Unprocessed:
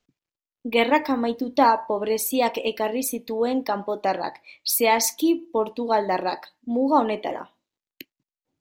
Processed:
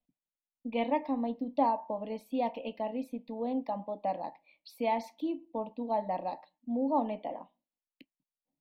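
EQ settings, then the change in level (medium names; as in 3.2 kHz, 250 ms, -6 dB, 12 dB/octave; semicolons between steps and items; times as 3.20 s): distance through air 440 m; static phaser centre 390 Hz, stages 6; -6.5 dB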